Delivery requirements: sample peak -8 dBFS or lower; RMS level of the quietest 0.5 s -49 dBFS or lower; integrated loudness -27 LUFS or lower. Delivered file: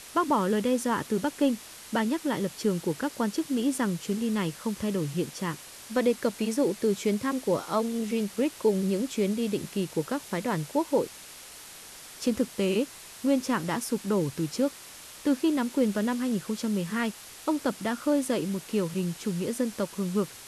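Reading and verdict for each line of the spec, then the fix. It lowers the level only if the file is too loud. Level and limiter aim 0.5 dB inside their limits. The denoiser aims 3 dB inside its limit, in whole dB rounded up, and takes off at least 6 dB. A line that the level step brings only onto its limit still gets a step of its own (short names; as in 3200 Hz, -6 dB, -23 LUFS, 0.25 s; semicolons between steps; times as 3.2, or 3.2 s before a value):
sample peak -13.0 dBFS: OK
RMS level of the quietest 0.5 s -46 dBFS: fail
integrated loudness -28.5 LUFS: OK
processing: denoiser 6 dB, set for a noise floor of -46 dBFS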